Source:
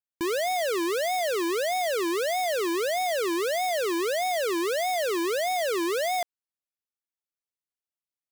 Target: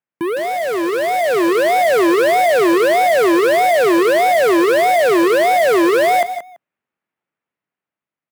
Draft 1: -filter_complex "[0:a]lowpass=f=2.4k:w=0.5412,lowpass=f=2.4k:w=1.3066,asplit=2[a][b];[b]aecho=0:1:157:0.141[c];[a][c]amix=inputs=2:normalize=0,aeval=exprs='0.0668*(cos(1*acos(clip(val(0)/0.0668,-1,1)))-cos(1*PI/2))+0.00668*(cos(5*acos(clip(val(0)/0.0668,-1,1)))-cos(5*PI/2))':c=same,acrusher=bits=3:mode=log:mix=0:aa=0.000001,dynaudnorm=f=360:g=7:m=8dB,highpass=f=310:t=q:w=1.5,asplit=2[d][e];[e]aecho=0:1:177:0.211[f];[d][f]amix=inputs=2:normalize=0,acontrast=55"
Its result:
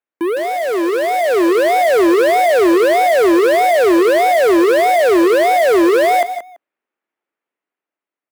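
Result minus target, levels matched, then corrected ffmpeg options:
125 Hz band -6.5 dB
-filter_complex "[0:a]lowpass=f=2.4k:w=0.5412,lowpass=f=2.4k:w=1.3066,asplit=2[a][b];[b]aecho=0:1:157:0.141[c];[a][c]amix=inputs=2:normalize=0,aeval=exprs='0.0668*(cos(1*acos(clip(val(0)/0.0668,-1,1)))-cos(1*PI/2))+0.00668*(cos(5*acos(clip(val(0)/0.0668,-1,1)))-cos(5*PI/2))':c=same,acrusher=bits=3:mode=log:mix=0:aa=0.000001,dynaudnorm=f=360:g=7:m=8dB,highpass=f=150:t=q:w=1.5,asplit=2[d][e];[e]aecho=0:1:177:0.211[f];[d][f]amix=inputs=2:normalize=0,acontrast=55"

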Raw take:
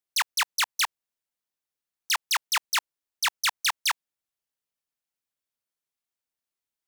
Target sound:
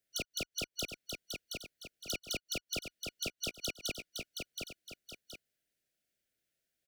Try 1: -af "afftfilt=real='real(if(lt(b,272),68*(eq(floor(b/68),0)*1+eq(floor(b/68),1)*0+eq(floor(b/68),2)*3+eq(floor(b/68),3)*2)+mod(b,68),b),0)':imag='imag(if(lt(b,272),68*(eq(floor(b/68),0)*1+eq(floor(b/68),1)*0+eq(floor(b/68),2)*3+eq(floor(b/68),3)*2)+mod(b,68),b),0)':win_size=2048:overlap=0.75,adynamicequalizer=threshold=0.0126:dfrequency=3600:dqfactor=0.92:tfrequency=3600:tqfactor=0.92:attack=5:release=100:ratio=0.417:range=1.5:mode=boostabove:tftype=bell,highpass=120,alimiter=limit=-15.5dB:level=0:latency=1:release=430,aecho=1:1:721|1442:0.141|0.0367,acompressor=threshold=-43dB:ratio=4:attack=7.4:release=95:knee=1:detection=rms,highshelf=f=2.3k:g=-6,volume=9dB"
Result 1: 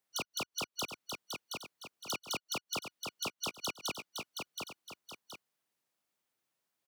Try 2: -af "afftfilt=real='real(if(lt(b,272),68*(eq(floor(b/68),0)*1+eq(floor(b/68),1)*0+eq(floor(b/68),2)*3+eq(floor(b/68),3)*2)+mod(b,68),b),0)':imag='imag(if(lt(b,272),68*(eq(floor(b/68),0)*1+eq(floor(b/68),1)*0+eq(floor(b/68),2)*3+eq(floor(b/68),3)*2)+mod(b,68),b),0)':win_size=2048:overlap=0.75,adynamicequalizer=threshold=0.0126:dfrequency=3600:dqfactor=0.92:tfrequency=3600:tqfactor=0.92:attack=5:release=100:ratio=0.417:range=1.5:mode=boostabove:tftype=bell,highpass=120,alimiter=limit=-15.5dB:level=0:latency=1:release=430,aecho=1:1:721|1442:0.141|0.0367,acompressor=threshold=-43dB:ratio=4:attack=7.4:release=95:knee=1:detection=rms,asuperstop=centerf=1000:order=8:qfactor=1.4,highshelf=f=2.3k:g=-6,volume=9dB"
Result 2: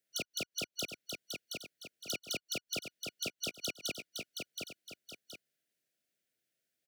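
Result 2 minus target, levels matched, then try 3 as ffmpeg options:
125 Hz band -2.5 dB
-af "afftfilt=real='real(if(lt(b,272),68*(eq(floor(b/68),0)*1+eq(floor(b/68),1)*0+eq(floor(b/68),2)*3+eq(floor(b/68),3)*2)+mod(b,68),b),0)':imag='imag(if(lt(b,272),68*(eq(floor(b/68),0)*1+eq(floor(b/68),1)*0+eq(floor(b/68),2)*3+eq(floor(b/68),3)*2)+mod(b,68),b),0)':win_size=2048:overlap=0.75,adynamicequalizer=threshold=0.0126:dfrequency=3600:dqfactor=0.92:tfrequency=3600:tqfactor=0.92:attack=5:release=100:ratio=0.417:range=1.5:mode=boostabove:tftype=bell,alimiter=limit=-15.5dB:level=0:latency=1:release=430,aecho=1:1:721|1442:0.141|0.0367,acompressor=threshold=-43dB:ratio=4:attack=7.4:release=95:knee=1:detection=rms,asuperstop=centerf=1000:order=8:qfactor=1.4,highshelf=f=2.3k:g=-6,volume=9dB"

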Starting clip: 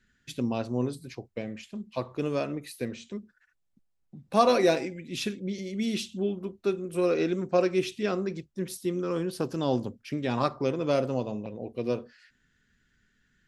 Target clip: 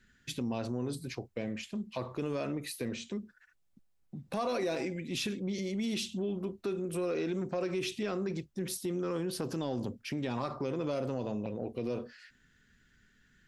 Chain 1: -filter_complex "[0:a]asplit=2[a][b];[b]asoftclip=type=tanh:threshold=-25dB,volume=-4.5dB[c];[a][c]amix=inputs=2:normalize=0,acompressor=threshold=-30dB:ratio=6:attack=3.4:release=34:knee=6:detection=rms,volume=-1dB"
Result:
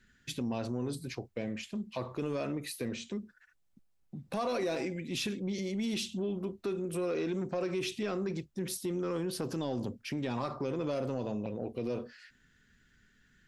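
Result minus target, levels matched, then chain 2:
soft clip: distortion +9 dB
-filter_complex "[0:a]asplit=2[a][b];[b]asoftclip=type=tanh:threshold=-15.5dB,volume=-4.5dB[c];[a][c]amix=inputs=2:normalize=0,acompressor=threshold=-30dB:ratio=6:attack=3.4:release=34:knee=6:detection=rms,volume=-1dB"

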